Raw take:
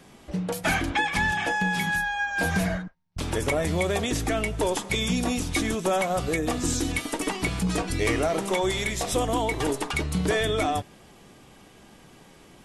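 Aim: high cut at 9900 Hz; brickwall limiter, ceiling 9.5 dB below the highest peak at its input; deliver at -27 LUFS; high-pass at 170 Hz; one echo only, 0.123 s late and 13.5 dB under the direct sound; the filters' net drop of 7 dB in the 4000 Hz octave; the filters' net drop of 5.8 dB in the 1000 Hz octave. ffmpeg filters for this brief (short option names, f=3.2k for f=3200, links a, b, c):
-af "highpass=170,lowpass=9.9k,equalizer=f=1k:t=o:g=-8,equalizer=f=4k:t=o:g=-8.5,alimiter=limit=-24dB:level=0:latency=1,aecho=1:1:123:0.211,volume=5.5dB"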